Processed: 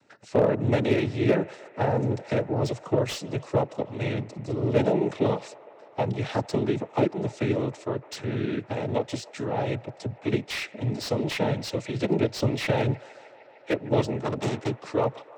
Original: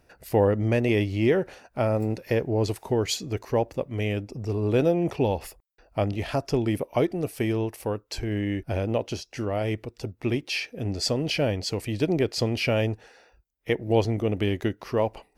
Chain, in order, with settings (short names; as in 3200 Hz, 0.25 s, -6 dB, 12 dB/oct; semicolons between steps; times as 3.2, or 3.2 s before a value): 14.17–14.73 self-modulated delay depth 0.73 ms; noise vocoder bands 12; on a send: band-limited delay 0.152 s, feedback 83%, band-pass 1100 Hz, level -20 dB; on the sum: slew limiter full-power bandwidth 110 Hz